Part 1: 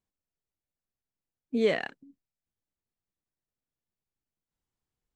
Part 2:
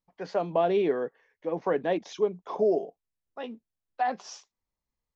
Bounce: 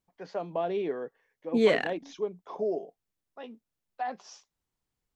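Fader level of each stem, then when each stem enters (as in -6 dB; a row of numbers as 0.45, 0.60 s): +2.5, -6.0 dB; 0.00, 0.00 s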